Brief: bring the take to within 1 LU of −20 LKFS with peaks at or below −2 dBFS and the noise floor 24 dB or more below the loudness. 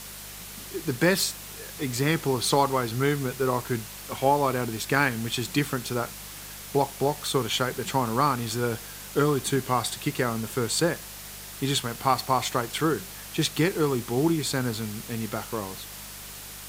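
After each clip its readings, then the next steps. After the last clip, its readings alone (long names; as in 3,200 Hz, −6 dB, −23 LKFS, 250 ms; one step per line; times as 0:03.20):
mains hum 50 Hz; hum harmonics up to 200 Hz; level of the hum −48 dBFS; background noise floor −41 dBFS; target noise floor −51 dBFS; integrated loudness −26.5 LKFS; sample peak −6.0 dBFS; target loudness −20.0 LKFS
→ hum removal 50 Hz, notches 4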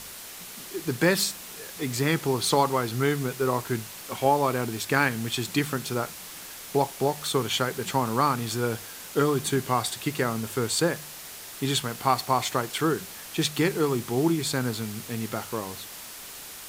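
mains hum none found; background noise floor −42 dBFS; target noise floor −51 dBFS
→ broadband denoise 9 dB, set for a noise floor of −42 dBFS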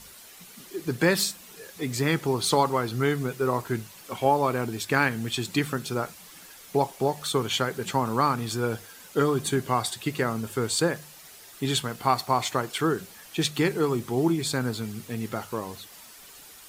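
background noise floor −48 dBFS; target noise floor −51 dBFS
→ broadband denoise 6 dB, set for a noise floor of −48 dBFS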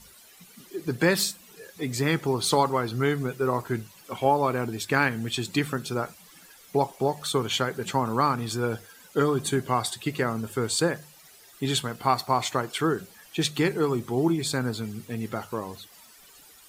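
background noise floor −53 dBFS; integrated loudness −27.0 LKFS; sample peak −6.0 dBFS; target loudness −20.0 LKFS
→ level +7 dB
brickwall limiter −2 dBFS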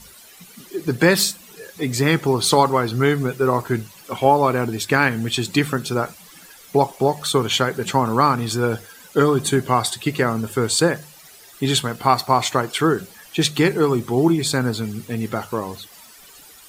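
integrated loudness −20.0 LKFS; sample peak −2.0 dBFS; background noise floor −46 dBFS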